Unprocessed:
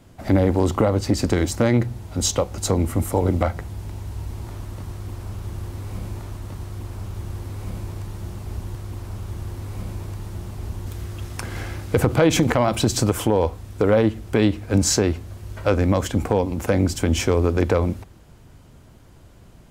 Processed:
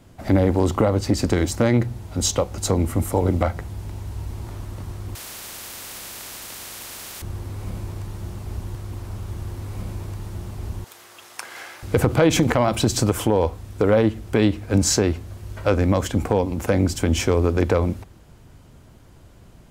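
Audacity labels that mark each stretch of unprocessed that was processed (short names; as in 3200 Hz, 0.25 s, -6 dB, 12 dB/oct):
5.150000	7.220000	spectral compressor 10:1
10.840000	11.830000	HPF 720 Hz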